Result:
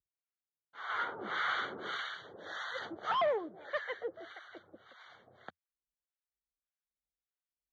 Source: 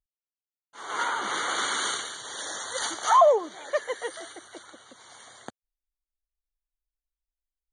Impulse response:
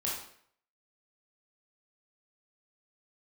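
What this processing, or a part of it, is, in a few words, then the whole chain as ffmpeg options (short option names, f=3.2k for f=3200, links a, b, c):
guitar amplifier with harmonic tremolo: -filter_complex "[0:a]acrossover=split=660[a][b];[a]aeval=exprs='val(0)*(1-1/2+1/2*cos(2*PI*1.7*n/s))':c=same[c];[b]aeval=exprs='val(0)*(1-1/2-1/2*cos(2*PI*1.7*n/s))':c=same[d];[c][d]amix=inputs=2:normalize=0,asoftclip=type=tanh:threshold=-25.5dB,highpass=78,equalizer=f=85:t=q:w=4:g=6,equalizer=f=170:t=q:w=4:g=4,equalizer=f=270:t=q:w=4:g=-6,equalizer=f=950:t=q:w=4:g=-6,equalizer=f=1.5k:t=q:w=4:g=3,equalizer=f=2.7k:t=q:w=4:g=-5,lowpass=f=3.4k:w=0.5412,lowpass=f=3.4k:w=1.3066"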